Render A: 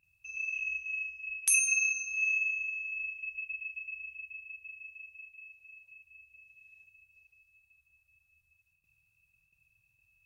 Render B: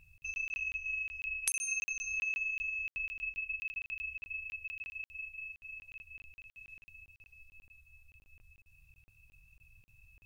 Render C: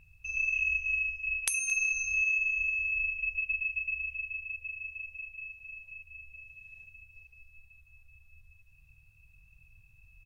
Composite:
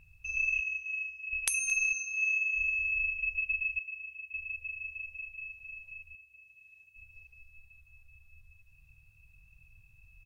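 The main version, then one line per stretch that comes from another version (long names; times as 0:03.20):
C
0:00.61–0:01.33: punch in from A
0:01.93–0:02.53: punch in from A
0:03.79–0:04.34: punch in from A
0:06.15–0:06.96: punch in from A
not used: B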